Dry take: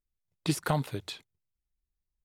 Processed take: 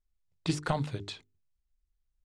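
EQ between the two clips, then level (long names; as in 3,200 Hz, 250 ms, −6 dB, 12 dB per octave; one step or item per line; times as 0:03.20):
low-pass filter 8,100 Hz 24 dB per octave
low-shelf EQ 86 Hz +11 dB
mains-hum notches 50/100/150/200/250/300/350/400/450 Hz
−1.5 dB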